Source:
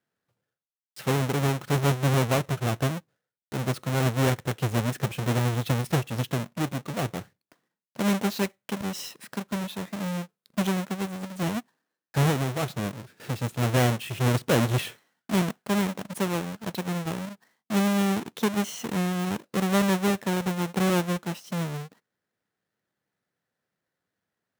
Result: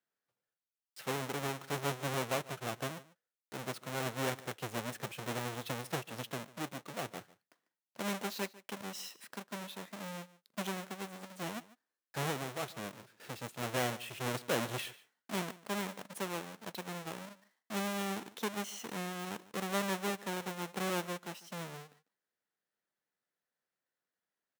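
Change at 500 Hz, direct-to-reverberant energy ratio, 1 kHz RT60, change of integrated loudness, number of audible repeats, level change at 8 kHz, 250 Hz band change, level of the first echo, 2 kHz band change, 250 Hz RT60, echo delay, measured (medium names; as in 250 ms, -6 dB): -10.0 dB, no reverb, no reverb, -11.5 dB, 1, -7.5 dB, -15.0 dB, -19.5 dB, -7.5 dB, no reverb, 147 ms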